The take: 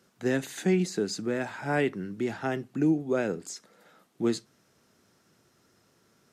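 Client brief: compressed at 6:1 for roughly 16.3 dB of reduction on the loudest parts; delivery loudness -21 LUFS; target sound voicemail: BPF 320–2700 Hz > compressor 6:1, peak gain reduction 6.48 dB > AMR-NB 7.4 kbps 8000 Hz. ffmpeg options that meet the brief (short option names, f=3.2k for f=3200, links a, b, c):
-af "acompressor=threshold=-38dB:ratio=6,highpass=320,lowpass=2.7k,acompressor=threshold=-43dB:ratio=6,volume=29dB" -ar 8000 -c:a libopencore_amrnb -b:a 7400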